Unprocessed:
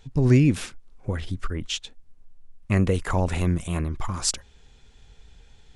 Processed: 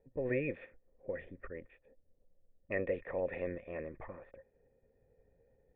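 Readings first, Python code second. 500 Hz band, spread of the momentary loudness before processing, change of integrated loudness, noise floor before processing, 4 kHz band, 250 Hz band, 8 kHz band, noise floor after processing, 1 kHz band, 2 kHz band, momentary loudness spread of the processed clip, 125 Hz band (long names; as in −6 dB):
−7.0 dB, 13 LU, −15.0 dB, −54 dBFS, below −35 dB, −19.5 dB, below −40 dB, −74 dBFS, −17.5 dB, −8.5 dB, 15 LU, −25.5 dB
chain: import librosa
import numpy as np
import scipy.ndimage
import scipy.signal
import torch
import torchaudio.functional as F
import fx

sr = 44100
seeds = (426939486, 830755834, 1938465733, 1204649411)

y = fx.spec_clip(x, sr, under_db=14)
y = fx.formant_cascade(y, sr, vowel='e')
y = fx.env_lowpass(y, sr, base_hz=680.0, full_db=-30.0)
y = F.gain(torch.from_numpy(y), -2.5).numpy()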